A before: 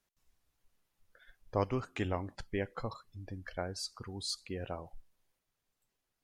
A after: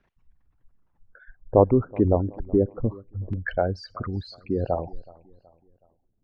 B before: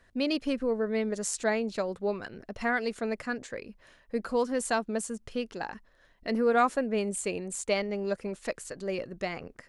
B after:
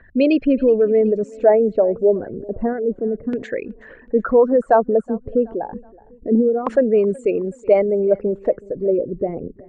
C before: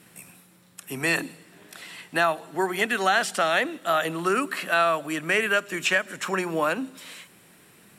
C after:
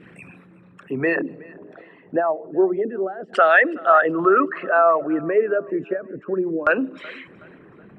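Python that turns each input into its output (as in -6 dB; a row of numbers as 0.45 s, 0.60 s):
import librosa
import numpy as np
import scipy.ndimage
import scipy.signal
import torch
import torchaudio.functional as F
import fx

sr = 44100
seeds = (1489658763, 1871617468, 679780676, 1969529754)

y = fx.envelope_sharpen(x, sr, power=2.0)
y = fx.filter_lfo_lowpass(y, sr, shape='saw_down', hz=0.3, low_hz=260.0, high_hz=2500.0, q=1.1)
y = fx.echo_feedback(y, sr, ms=373, feedback_pct=42, wet_db=-23.0)
y = y * 10.0 ** (-3 / 20.0) / np.max(np.abs(y))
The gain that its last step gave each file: +14.0 dB, +13.5 dB, +7.5 dB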